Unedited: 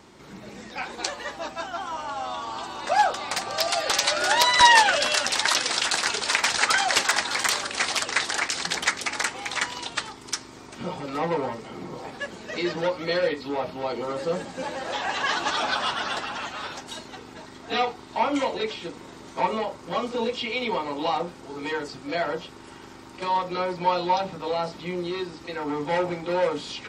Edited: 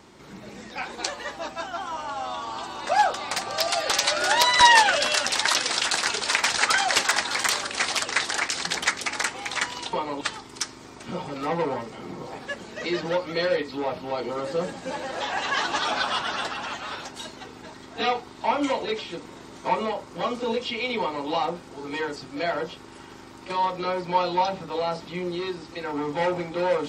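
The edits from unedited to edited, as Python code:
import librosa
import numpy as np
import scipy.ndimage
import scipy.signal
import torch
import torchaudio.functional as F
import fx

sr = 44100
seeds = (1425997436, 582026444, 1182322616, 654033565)

y = fx.edit(x, sr, fx.duplicate(start_s=20.72, length_s=0.28, to_s=9.93), tone=tone)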